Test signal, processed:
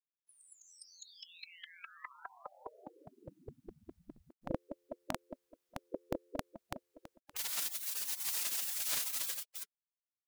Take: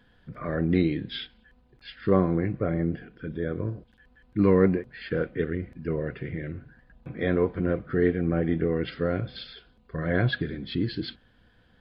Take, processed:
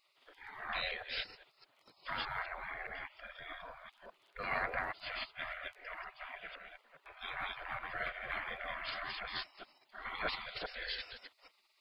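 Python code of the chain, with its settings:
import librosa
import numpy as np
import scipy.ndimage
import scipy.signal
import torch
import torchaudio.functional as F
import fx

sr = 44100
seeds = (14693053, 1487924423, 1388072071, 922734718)

y = fx.reverse_delay(x, sr, ms=205, wet_db=-0.5)
y = fx.spec_gate(y, sr, threshold_db=-25, keep='weak')
y = F.gain(torch.from_numpy(y), 3.0).numpy()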